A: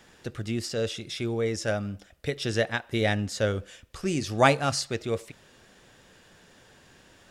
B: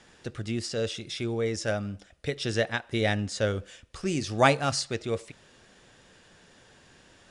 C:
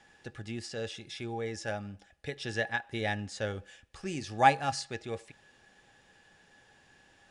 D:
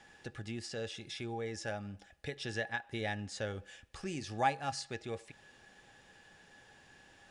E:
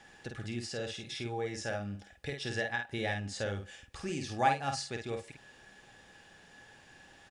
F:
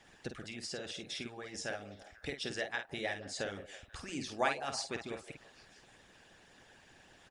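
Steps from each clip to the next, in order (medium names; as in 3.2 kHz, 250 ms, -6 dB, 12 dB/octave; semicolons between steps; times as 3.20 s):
elliptic low-pass 10 kHz, stop band 40 dB
peaking EQ 2.5 kHz +3 dB 0.69 oct; small resonant body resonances 810/1700 Hz, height 16 dB, ringing for 95 ms; trim -8 dB
compression 1.5:1, threshold -46 dBFS, peak gain reduction 11 dB; trim +1.5 dB
doubling 50 ms -5 dB; trim +2 dB
repeats whose band climbs or falls 162 ms, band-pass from 530 Hz, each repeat 0.7 oct, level -10 dB; harmonic-percussive split harmonic -18 dB; trim +2.5 dB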